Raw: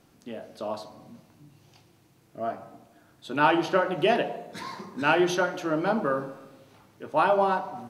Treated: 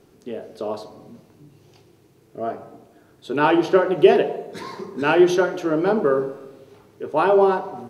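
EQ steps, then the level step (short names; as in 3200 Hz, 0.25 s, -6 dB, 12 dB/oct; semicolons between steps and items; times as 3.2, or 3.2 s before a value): low shelf 170 Hz +4 dB; bell 410 Hz +14 dB 0.42 oct; +1.5 dB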